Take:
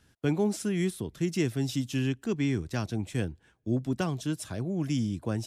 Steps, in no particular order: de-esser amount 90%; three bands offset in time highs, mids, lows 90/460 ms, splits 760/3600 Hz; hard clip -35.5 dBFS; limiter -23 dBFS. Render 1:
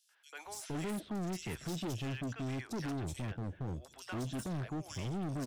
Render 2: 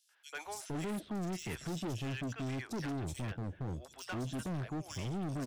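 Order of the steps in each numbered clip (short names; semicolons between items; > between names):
limiter > three bands offset in time > hard clip > de-esser; de-esser > three bands offset in time > limiter > hard clip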